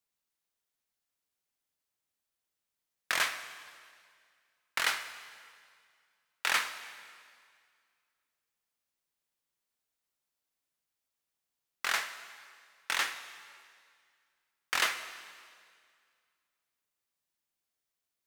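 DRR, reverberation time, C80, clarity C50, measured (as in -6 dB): 9.5 dB, 2.1 s, 12.0 dB, 11.0 dB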